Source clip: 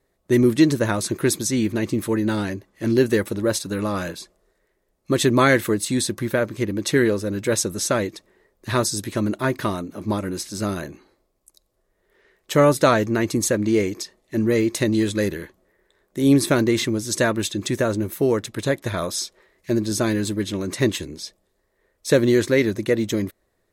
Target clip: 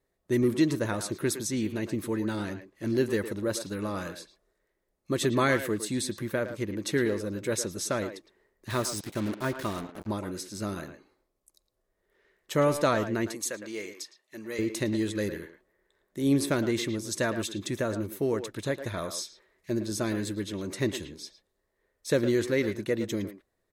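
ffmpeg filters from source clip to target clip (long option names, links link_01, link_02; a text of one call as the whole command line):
ffmpeg -i in.wav -filter_complex "[0:a]asettb=1/sr,asplit=3[link_01][link_02][link_03];[link_01]atrim=end=8.704[link_04];[link_02]atrim=start=8.7:end=10.07,asetpts=PTS-STARTPTS,afade=type=in:duration=0.004:curve=qsin,afade=type=out:start_time=1.366:duration=0.004:curve=qsin,acrusher=bits=4:mix=0:aa=0.5[link_05];[link_03]atrim=start=10.066[link_06];[link_04][link_05]acrossfade=duration=0.004:curve1=hsin:curve2=qsin[link_07];[link_07][link_06]acrossfade=duration=0.004:curve1=qsin:curve2=hsin,asettb=1/sr,asplit=3[link_08][link_09][link_10];[link_08]atrim=end=13.324[link_11];[link_09]atrim=start=13.32:end=14.59,asetpts=PTS-STARTPTS,afade=type=in:duration=0.004:curve=qsin,afade=type=out:start_time=1.266:duration=0.004:curve=qsin,highpass=frequency=1100:poles=1[link_12];[link_10]atrim=start=14.586[link_13];[link_11][link_12]acrossfade=duration=0.004:curve1=hsin:curve2=qsin[link_14];[link_14][link_13]acrossfade=duration=0.004:curve1=qsin:curve2=hsin,asplit=2[link_15][link_16];[link_16]adelay=110,highpass=300,lowpass=3400,asoftclip=type=hard:threshold=-13dB,volume=-9dB[link_17];[link_15][link_17]amix=inputs=2:normalize=0,volume=-8.5dB" out.wav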